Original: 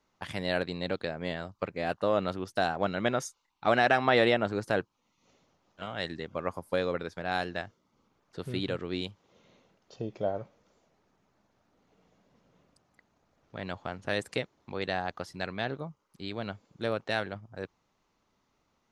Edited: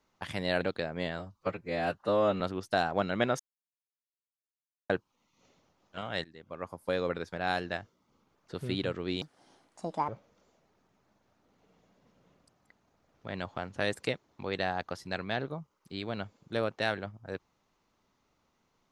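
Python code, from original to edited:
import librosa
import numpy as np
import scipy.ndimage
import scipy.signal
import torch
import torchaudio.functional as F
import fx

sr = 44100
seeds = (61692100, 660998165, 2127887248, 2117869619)

y = fx.edit(x, sr, fx.cut(start_s=0.61, length_s=0.25),
    fx.stretch_span(start_s=1.44, length_s=0.81, factor=1.5),
    fx.silence(start_s=3.24, length_s=1.5),
    fx.fade_in_from(start_s=6.09, length_s=0.88, floor_db=-20.0),
    fx.speed_span(start_s=9.06, length_s=1.31, speed=1.51), tone=tone)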